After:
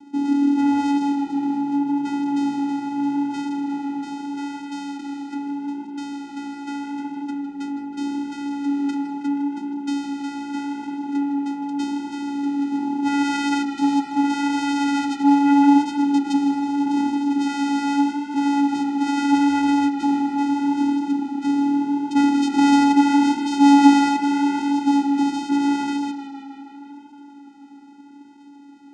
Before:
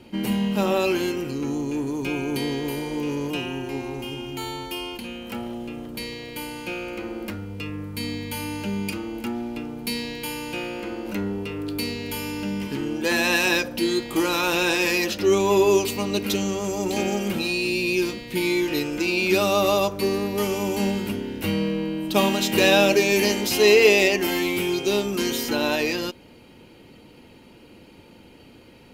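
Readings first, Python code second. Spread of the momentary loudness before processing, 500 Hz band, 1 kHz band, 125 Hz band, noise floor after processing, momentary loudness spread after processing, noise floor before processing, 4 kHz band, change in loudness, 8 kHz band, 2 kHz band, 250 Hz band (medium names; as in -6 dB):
14 LU, -19.0 dB, +8.0 dB, under -10 dB, -43 dBFS, 14 LU, -49 dBFS, -7.5 dB, +2.5 dB, -7.0 dB, -7.0 dB, +8.0 dB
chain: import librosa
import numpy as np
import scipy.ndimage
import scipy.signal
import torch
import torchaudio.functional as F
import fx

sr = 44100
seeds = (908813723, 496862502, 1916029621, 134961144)

y = fx.vocoder(x, sr, bands=4, carrier='square', carrier_hz=283.0)
y = fx.echo_tape(y, sr, ms=157, feedback_pct=80, wet_db=-11.0, lp_hz=5300.0, drive_db=7.0, wow_cents=30)
y = y * 10.0 ** (3.5 / 20.0)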